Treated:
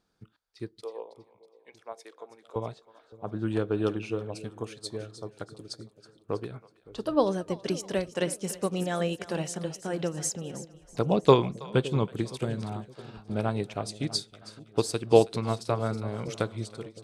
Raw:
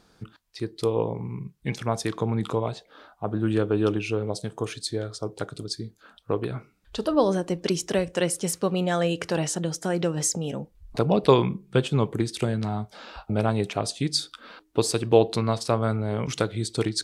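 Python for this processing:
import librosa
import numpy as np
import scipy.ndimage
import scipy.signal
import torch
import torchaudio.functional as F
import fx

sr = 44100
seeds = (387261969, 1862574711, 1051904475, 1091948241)

p1 = fx.fade_out_tail(x, sr, length_s=0.53)
p2 = fx.ladder_highpass(p1, sr, hz=390.0, resonance_pct=30, at=(0.81, 2.56))
p3 = p2 + fx.echo_split(p2, sr, split_hz=550.0, low_ms=564, high_ms=323, feedback_pct=52, wet_db=-12.0, dry=0)
y = fx.upward_expand(p3, sr, threshold_db=-45.0, expansion=1.5)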